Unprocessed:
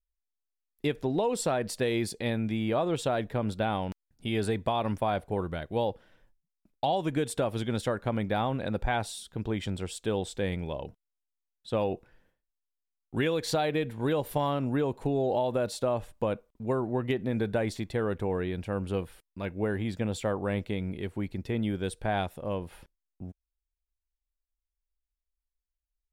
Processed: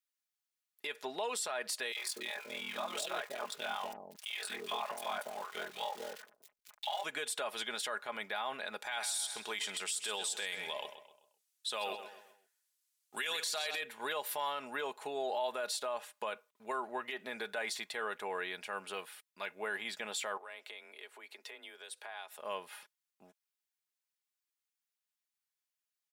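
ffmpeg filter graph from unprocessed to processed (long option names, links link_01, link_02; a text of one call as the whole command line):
ffmpeg -i in.wav -filter_complex "[0:a]asettb=1/sr,asplit=3[link_01][link_02][link_03];[link_01]atrim=end=1.924[link_04];[link_02]atrim=start=1.92:end=7.04,asetpts=PTS-STARTPTS,afade=type=in:duration=0.004:curve=qsin,afade=type=out:start_time=5.116:duration=0.004:curve=qsin,aeval=exprs='val(0)+0.5*0.00794*sgn(val(0))':channel_layout=same,aeval=exprs='val(0)*sin(2*PI*21*n/s)':channel_layout=same,acrossover=split=560|1900[link_05][link_06][link_07];[link_06]adelay=40[link_08];[link_05]adelay=240[link_09];[link_09][link_08][link_07]amix=inputs=3:normalize=0,atrim=end_sample=225792[link_10];[link_03]atrim=start=7.036[link_11];[link_04][link_10]acrossfade=duration=0.004:curve1=hsin:curve2=qsin[link_12];[link_12][link_11]acrossfade=duration=0.004:curve1=qsin:curve2=hsin,asettb=1/sr,asplit=3[link_13][link_14][link_15];[link_13]atrim=end=8.824[link_16];[link_14]atrim=start=8.82:end=13.81,asetpts=PTS-STARTPTS,afade=type=in:duration=0.004:curve=qsin,afade=type=out:start_time=4.986:duration=0.004:curve=qsin,equalizer=frequency=9300:width_type=o:width=2.5:gain=13,asplit=2[link_17][link_18];[link_18]adelay=129,lowpass=frequency=4100:poles=1,volume=-11.5dB,asplit=2[link_19][link_20];[link_20]adelay=129,lowpass=frequency=4100:poles=1,volume=0.41,asplit=2[link_21][link_22];[link_22]adelay=129,lowpass=frequency=4100:poles=1,volume=0.41,asplit=2[link_23][link_24];[link_24]adelay=129,lowpass=frequency=4100:poles=1,volume=0.41[link_25];[link_17][link_19][link_21][link_23][link_25]amix=inputs=5:normalize=0,atrim=end_sample=220059[link_26];[link_15]atrim=start=13.806[link_27];[link_16][link_26]acrossfade=duration=0.004:curve1=hsin:curve2=qsin[link_28];[link_28][link_27]acrossfade=duration=0.004:curve1=qsin:curve2=hsin,asettb=1/sr,asplit=3[link_29][link_30][link_31];[link_29]atrim=end=20.374[link_32];[link_30]atrim=start=20.37:end=22.39,asetpts=PTS-STARTPTS,afade=type=in:duration=0.004:curve=qsin,afade=type=out:start_time=2.016:duration=0.004:curve=qsin,highpass=frequency=280:width=0.5412,highpass=frequency=280:width=1.3066,afreqshift=29,acompressor=threshold=-46dB:ratio=3:attack=3.2:release=140:knee=1:detection=peak[link_33];[link_31]atrim=start=22.386[link_34];[link_32][link_33]acrossfade=duration=0.004:curve1=hsin:curve2=qsin[link_35];[link_35][link_34]acrossfade=duration=0.004:curve1=qsin:curve2=hsin,highpass=1100,aecho=1:1:4.8:0.48,alimiter=level_in=7dB:limit=-24dB:level=0:latency=1:release=49,volume=-7dB,volume=4dB" out.wav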